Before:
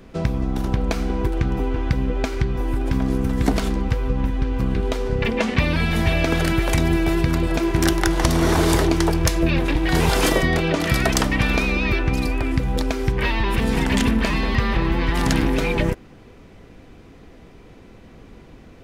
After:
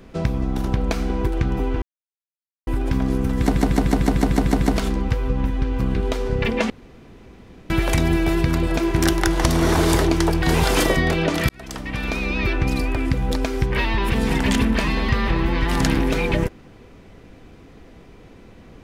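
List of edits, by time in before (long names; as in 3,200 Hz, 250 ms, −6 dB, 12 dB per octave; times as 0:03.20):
0:01.82–0:02.67: silence
0:03.41: stutter 0.15 s, 9 plays
0:05.50–0:06.50: fill with room tone
0:09.22–0:09.88: remove
0:10.95–0:12.04: fade in linear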